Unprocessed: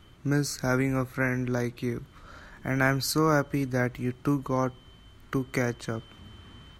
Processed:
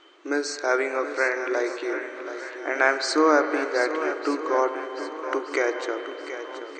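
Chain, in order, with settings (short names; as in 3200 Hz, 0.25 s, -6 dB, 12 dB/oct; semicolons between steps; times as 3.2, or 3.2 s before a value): brick-wall FIR band-pass 290–8600 Hz; air absorption 73 m; on a send: swung echo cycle 1.214 s, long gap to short 1.5:1, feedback 38%, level -11 dB; on the sum: spring tank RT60 3.4 s, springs 36/46 ms, chirp 50 ms, DRR 8.5 dB; gain +6 dB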